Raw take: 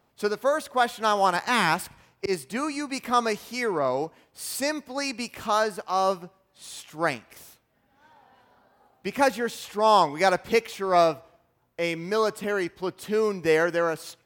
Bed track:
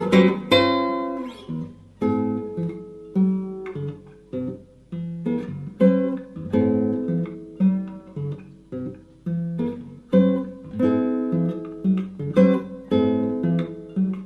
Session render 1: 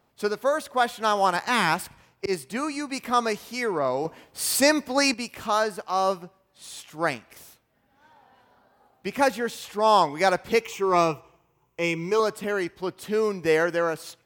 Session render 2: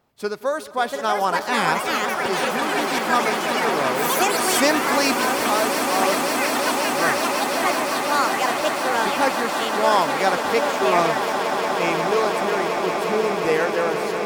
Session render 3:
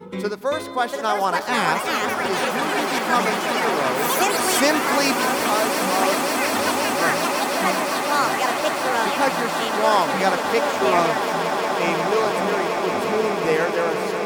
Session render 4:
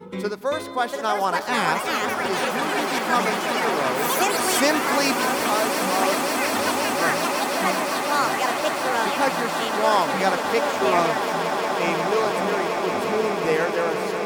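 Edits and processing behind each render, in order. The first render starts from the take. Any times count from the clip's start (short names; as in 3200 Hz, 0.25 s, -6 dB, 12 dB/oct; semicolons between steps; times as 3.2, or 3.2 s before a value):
4.05–5.14 gain +8 dB; 10.64–12.2 ripple EQ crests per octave 0.73, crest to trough 11 dB
echoes that change speed 0.75 s, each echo +5 st, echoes 3; swelling echo 0.179 s, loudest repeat 8, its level -11 dB
add bed track -15 dB
gain -1.5 dB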